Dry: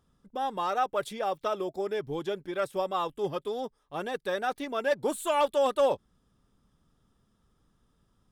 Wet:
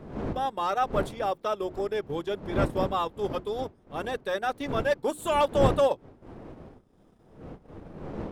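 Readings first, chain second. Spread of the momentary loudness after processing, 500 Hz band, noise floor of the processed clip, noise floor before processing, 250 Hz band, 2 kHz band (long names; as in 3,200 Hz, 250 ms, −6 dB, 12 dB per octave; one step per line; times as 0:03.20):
22 LU, +1.5 dB, −60 dBFS, −71 dBFS, +5.0 dB, +1.5 dB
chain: wind on the microphone 380 Hz −36 dBFS
mains-hum notches 60/120/180/240/300/360 Hz
transient designer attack −3 dB, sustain −8 dB
level +2.5 dB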